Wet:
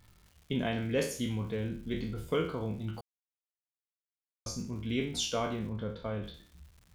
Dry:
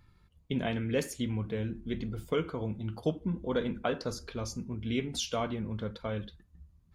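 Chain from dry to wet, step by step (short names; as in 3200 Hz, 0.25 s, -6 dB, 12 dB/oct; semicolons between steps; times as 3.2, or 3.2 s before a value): spectral trails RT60 0.46 s; crackle 360/s -49 dBFS; 3.01–4.46 mute; 5.69–6.24 high shelf 3100 Hz -11.5 dB; gain -1.5 dB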